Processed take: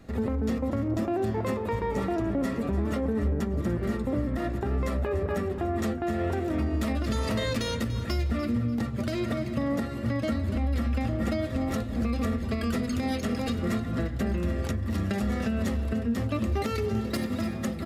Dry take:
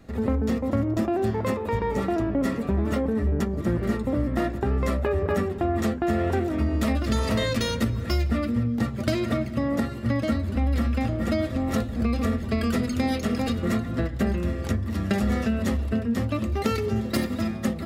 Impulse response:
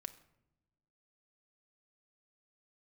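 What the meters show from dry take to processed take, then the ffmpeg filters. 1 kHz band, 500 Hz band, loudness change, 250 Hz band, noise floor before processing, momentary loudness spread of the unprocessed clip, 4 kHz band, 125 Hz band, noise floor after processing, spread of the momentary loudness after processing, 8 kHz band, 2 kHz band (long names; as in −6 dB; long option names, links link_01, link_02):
−3.5 dB, −3.5 dB, −3.5 dB, −3.5 dB, −32 dBFS, 2 LU, −3.5 dB, −3.0 dB, −33 dBFS, 2 LU, −3.5 dB, −3.5 dB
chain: -af "aecho=1:1:292|584|876:0.188|0.0546|0.0158,alimiter=limit=-19dB:level=0:latency=1:release=200,aresample=32000,aresample=44100"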